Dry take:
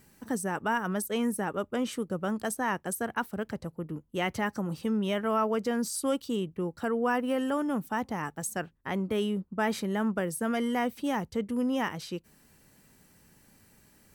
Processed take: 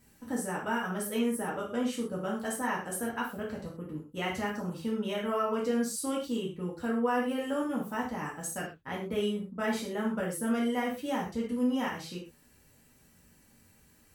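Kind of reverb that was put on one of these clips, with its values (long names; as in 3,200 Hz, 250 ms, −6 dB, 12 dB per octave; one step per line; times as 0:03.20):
reverb whose tail is shaped and stops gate 150 ms falling, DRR −4.5 dB
level −7.5 dB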